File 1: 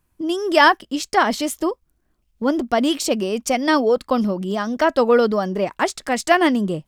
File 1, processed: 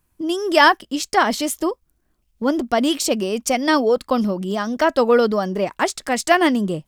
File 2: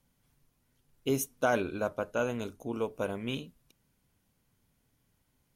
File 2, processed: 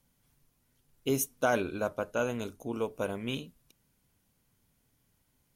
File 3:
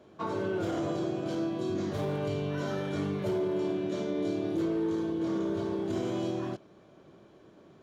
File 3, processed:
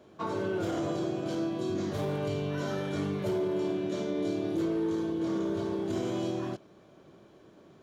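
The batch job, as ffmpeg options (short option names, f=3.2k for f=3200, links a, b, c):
-af "highshelf=f=5.3k:g=4"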